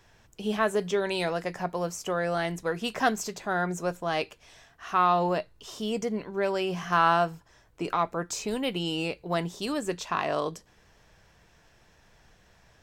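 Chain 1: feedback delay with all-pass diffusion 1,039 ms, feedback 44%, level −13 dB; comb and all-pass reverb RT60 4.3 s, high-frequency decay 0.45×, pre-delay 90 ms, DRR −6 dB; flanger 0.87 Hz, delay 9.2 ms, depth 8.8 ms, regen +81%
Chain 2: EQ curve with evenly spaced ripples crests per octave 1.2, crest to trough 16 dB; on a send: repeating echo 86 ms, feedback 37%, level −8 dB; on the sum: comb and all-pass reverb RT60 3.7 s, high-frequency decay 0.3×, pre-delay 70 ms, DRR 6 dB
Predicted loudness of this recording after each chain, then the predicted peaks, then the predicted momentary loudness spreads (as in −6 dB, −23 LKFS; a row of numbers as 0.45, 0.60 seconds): −26.5, −24.5 LKFS; −10.0, −8.0 dBFS; 14, 12 LU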